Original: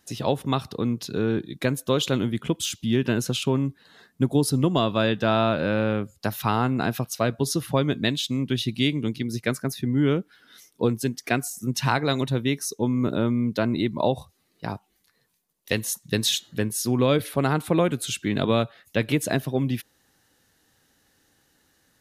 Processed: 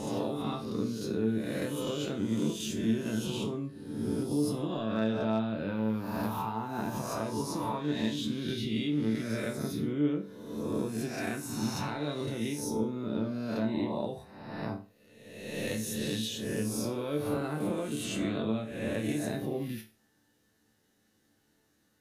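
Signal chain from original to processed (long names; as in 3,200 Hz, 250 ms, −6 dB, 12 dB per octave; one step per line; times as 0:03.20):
peak hold with a rise ahead of every peak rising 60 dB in 1.19 s
0:05.68–0:08.20: parametric band 940 Hz +12.5 dB 0.31 octaves
downward compressor 16 to 1, threshold −21 dBFS, peak gain reduction 10.5 dB
resonators tuned to a chord D2 sus4, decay 0.33 s
hard clipping −23.5 dBFS, distortion −39 dB
parametric band 240 Hz +8 dB 2.2 octaves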